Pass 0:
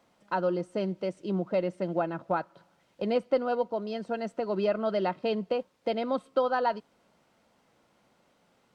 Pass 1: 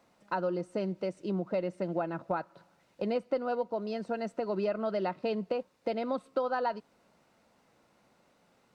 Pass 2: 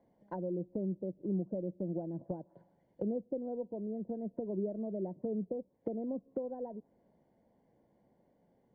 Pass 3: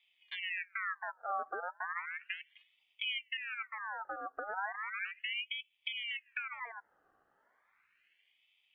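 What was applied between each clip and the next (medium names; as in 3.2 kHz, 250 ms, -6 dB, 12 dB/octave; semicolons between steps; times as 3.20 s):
band-stop 3.2 kHz, Q 13; compression 2:1, threshold -30 dBFS, peak gain reduction 6 dB
boxcar filter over 34 samples; low-pass that closes with the level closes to 420 Hz, closed at -34.5 dBFS
ring modulator with a swept carrier 1.9 kHz, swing 50%, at 0.35 Hz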